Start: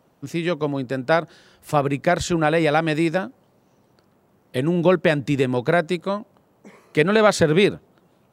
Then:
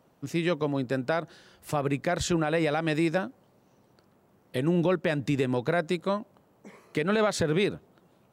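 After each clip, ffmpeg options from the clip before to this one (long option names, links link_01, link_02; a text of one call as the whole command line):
ffmpeg -i in.wav -af "alimiter=limit=-12.5dB:level=0:latency=1:release=134,volume=-3dB" out.wav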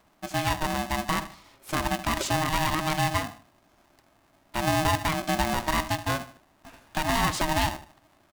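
ffmpeg -i in.wav -filter_complex "[0:a]asplit=2[link_01][link_02];[link_02]adelay=76,lowpass=frequency=2000:poles=1,volume=-13dB,asplit=2[link_03][link_04];[link_04]adelay=76,lowpass=frequency=2000:poles=1,volume=0.34,asplit=2[link_05][link_06];[link_06]adelay=76,lowpass=frequency=2000:poles=1,volume=0.34[link_07];[link_01][link_03][link_05][link_07]amix=inputs=4:normalize=0,aeval=exprs='val(0)*sgn(sin(2*PI*470*n/s))':channel_layout=same" out.wav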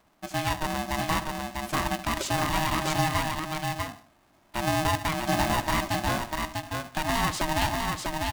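ffmpeg -i in.wav -af "aecho=1:1:647:0.668,volume=-1.5dB" out.wav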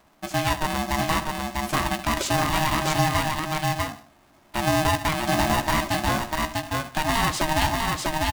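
ffmpeg -i in.wav -filter_complex "[0:a]asplit=2[link_01][link_02];[link_02]alimiter=limit=-20.5dB:level=0:latency=1:release=432,volume=-2dB[link_03];[link_01][link_03]amix=inputs=2:normalize=0,asplit=2[link_04][link_05];[link_05]adelay=14,volume=-11dB[link_06];[link_04][link_06]amix=inputs=2:normalize=0" out.wav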